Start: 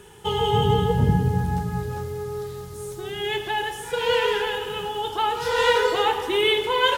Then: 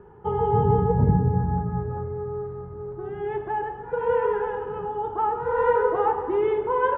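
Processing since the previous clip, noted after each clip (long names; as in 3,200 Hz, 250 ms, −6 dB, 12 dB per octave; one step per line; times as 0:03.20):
low-pass filter 1,300 Hz 24 dB per octave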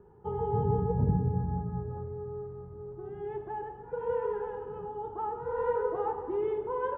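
parametric band 2,200 Hz −8 dB 2.3 octaves
level −7 dB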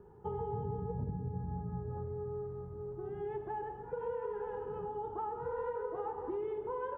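downward compressor 6 to 1, threshold −35 dBFS, peak gain reduction 13.5 dB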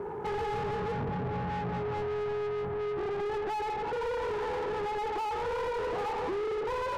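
mid-hump overdrive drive 35 dB, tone 1,600 Hz, clips at −26 dBFS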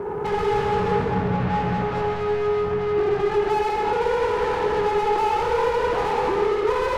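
convolution reverb RT60 1.8 s, pre-delay 58 ms, DRR 0.5 dB
level +7.5 dB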